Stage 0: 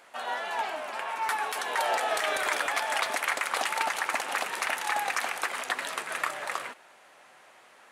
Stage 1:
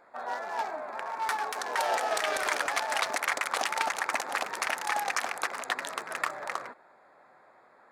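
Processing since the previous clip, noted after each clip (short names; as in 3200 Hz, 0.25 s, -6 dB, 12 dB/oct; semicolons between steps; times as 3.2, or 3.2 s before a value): Wiener smoothing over 15 samples; dynamic EQ 5900 Hz, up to +5 dB, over -48 dBFS, Q 0.95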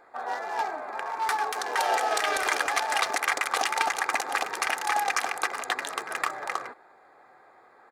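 comb 2.5 ms, depth 39%; gain +2.5 dB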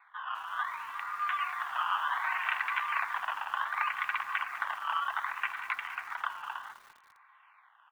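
decimation with a swept rate 16×, swing 100% 0.66 Hz; mistuned SSB +310 Hz 570–2500 Hz; lo-fi delay 0.201 s, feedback 55%, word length 7-bit, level -13 dB; gain -4 dB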